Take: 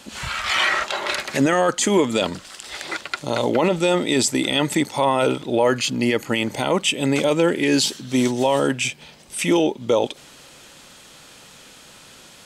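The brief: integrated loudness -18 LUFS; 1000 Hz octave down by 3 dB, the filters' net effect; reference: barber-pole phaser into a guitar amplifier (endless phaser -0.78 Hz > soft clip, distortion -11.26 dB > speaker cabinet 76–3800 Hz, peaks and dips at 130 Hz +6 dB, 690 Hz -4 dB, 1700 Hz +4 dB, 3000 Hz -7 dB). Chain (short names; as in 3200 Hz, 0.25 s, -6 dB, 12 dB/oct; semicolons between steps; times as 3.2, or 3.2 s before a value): bell 1000 Hz -3 dB; endless phaser -0.78 Hz; soft clip -20.5 dBFS; speaker cabinet 76–3800 Hz, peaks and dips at 130 Hz +6 dB, 690 Hz -4 dB, 1700 Hz +4 dB, 3000 Hz -7 dB; gain +10 dB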